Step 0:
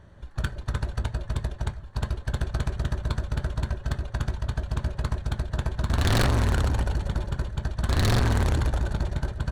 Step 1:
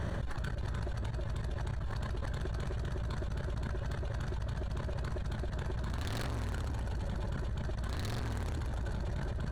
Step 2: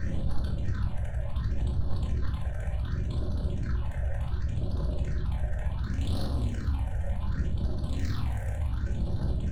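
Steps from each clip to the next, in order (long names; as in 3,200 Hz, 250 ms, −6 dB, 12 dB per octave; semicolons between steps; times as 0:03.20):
output level in coarse steps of 18 dB; brickwall limiter −38 dBFS, peak gain reduction 11 dB; envelope flattener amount 100%; level +4 dB
all-pass phaser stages 6, 0.68 Hz, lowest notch 290–2,200 Hz; rectangular room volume 410 cubic metres, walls furnished, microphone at 2.1 metres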